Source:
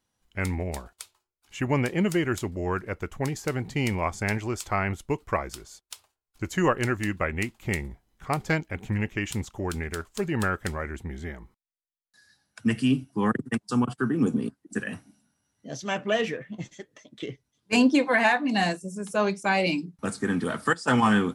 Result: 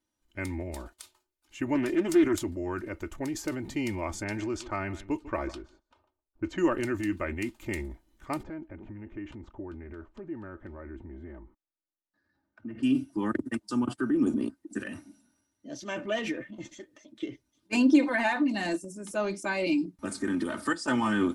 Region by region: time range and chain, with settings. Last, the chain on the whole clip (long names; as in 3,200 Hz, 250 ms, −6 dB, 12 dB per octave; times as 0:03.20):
0:01.75–0:02.36: comb filter 2.9 ms, depth 49% + highs frequency-modulated by the lows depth 0.22 ms
0:04.24–0:06.66: notch filter 2,000 Hz, Q 13 + low-pass that shuts in the quiet parts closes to 690 Hz, open at −22.5 dBFS + single-tap delay 148 ms −23 dB
0:08.43–0:12.83: low-pass filter 1,300 Hz + downward compressor 3 to 1, threshold −34 dBFS
whole clip: transient designer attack +1 dB, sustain +8 dB; parametric band 320 Hz +8 dB 0.47 octaves; comb filter 3.3 ms, depth 55%; level −8.5 dB